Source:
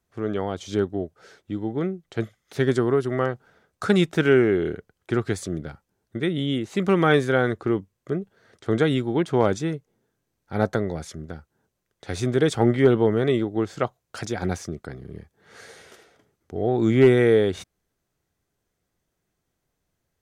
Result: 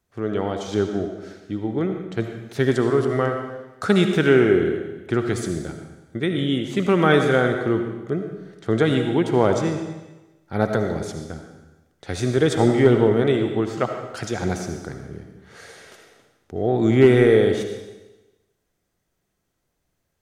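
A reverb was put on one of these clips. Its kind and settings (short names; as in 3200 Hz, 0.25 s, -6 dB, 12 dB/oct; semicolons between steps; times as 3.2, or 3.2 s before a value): digital reverb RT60 1.1 s, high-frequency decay 1×, pre-delay 35 ms, DRR 5 dB; gain +1.5 dB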